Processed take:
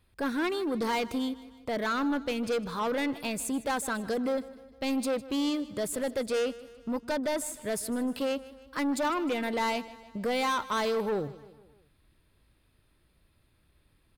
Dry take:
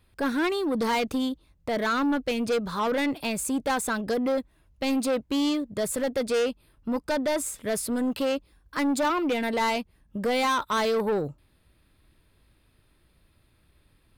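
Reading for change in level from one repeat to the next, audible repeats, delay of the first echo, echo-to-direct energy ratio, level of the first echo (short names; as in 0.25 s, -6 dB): -5.5 dB, 4, 0.154 s, -16.5 dB, -18.0 dB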